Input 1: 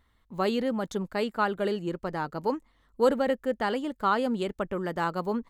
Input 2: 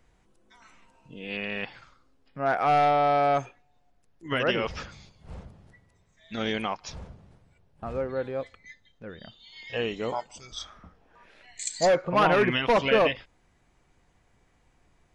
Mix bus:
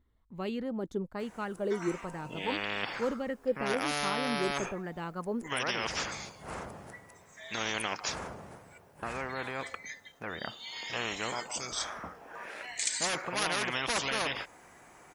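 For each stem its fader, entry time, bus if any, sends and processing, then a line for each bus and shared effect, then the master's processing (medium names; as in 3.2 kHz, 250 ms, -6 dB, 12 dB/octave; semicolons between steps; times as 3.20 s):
-14.5 dB, 0.00 s, no send, bass shelf 370 Hz +11.5 dB; sweeping bell 1.1 Hz 320–2700 Hz +10 dB
+2.0 dB, 1.20 s, no send, high-pass 1.1 kHz 6 dB/octave; peaking EQ 3.7 kHz -14 dB 1.6 oct; spectrum-flattening compressor 4:1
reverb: none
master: none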